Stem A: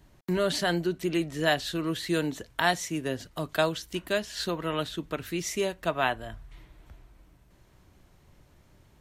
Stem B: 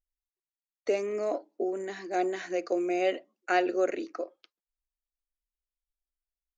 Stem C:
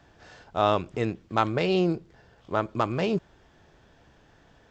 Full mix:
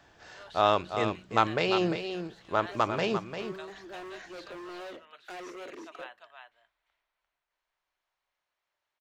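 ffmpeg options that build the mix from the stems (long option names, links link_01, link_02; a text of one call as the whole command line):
ffmpeg -i stem1.wav -i stem2.wav -i stem3.wav -filter_complex "[0:a]acrossover=split=570 5600:gain=0.0631 1 0.158[link_01][link_02][link_03];[link_01][link_02][link_03]amix=inputs=3:normalize=0,volume=-17dB,asplit=2[link_04][link_05];[link_05]volume=-4.5dB[link_06];[1:a]tiltshelf=frequency=970:gain=4.5,alimiter=limit=-19.5dB:level=0:latency=1:release=12,volume=32.5dB,asoftclip=hard,volume=-32.5dB,adelay=1800,volume=-4.5dB[link_07];[2:a]volume=1.5dB,asplit=3[link_08][link_09][link_10];[link_09]volume=-8.5dB[link_11];[link_10]apad=whole_len=369204[link_12];[link_07][link_12]sidechaincompress=threshold=-35dB:ratio=8:attack=16:release=110[link_13];[link_06][link_11]amix=inputs=2:normalize=0,aecho=0:1:347:1[link_14];[link_04][link_13][link_08][link_14]amix=inputs=4:normalize=0,lowshelf=frequency=450:gain=-8.5,bandreject=frequency=62.36:width_type=h:width=4,bandreject=frequency=124.72:width_type=h:width=4,bandreject=frequency=187.08:width_type=h:width=4,bandreject=frequency=249.44:width_type=h:width=4" out.wav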